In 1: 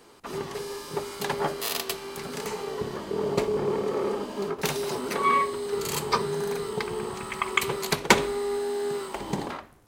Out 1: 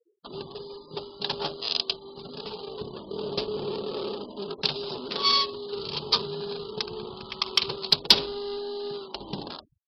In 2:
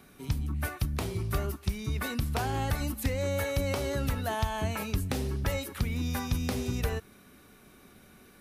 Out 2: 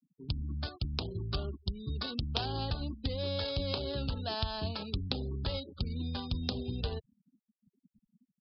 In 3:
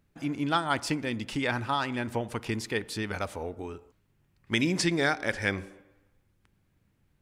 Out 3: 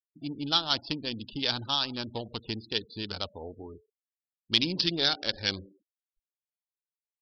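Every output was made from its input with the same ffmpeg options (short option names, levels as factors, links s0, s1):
-af "adynamicsmooth=sensitivity=2.5:basefreq=670,aresample=11025,asoftclip=type=tanh:threshold=0.168,aresample=44100,aexciter=amount=11:drive=8.4:freq=3200,afftfilt=real='re*gte(hypot(re,im),0.0112)':imag='im*gte(hypot(re,im),0.0112)':win_size=1024:overlap=0.75,volume=0.596"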